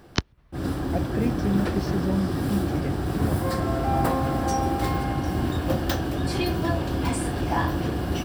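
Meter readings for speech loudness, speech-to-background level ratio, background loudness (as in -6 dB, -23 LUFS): -29.5 LUFS, -3.5 dB, -26.0 LUFS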